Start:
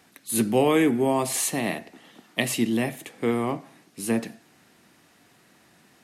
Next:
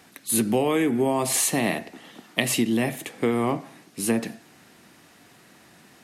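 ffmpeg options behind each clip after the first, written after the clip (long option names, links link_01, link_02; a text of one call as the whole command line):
ffmpeg -i in.wav -af "acompressor=threshold=-23dB:ratio=10,volume=5dB" out.wav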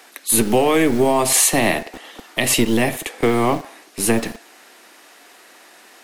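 ffmpeg -i in.wav -filter_complex "[0:a]acrossover=split=330[link_01][link_02];[link_01]acrusher=bits=4:dc=4:mix=0:aa=0.000001[link_03];[link_03][link_02]amix=inputs=2:normalize=0,alimiter=level_in=9dB:limit=-1dB:release=50:level=0:latency=1,volume=-1dB" out.wav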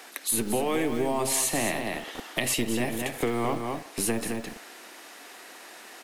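ffmpeg -i in.wav -af "aecho=1:1:213:0.376,acompressor=threshold=-29dB:ratio=2.5" out.wav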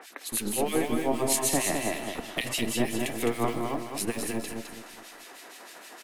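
ffmpeg -i in.wav -filter_complex "[0:a]acrossover=split=1900[link_01][link_02];[link_01]aeval=exprs='val(0)*(1-1/2+1/2*cos(2*PI*6.4*n/s))':channel_layout=same[link_03];[link_02]aeval=exprs='val(0)*(1-1/2-1/2*cos(2*PI*6.4*n/s))':channel_layout=same[link_04];[link_03][link_04]amix=inputs=2:normalize=0,aecho=1:1:210|420|630|840:0.531|0.175|0.0578|0.0191,volume=3dB" out.wav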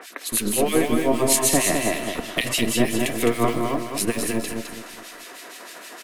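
ffmpeg -i in.wav -af "asuperstop=centerf=830:order=4:qfactor=6.5,volume=7dB" out.wav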